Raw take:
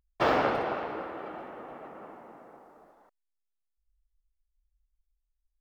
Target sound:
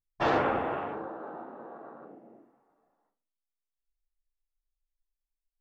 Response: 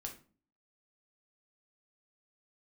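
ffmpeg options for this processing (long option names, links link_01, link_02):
-filter_complex "[0:a]afwtdn=0.01[link_01];[1:a]atrim=start_sample=2205[link_02];[link_01][link_02]afir=irnorm=-1:irlink=0,volume=2dB"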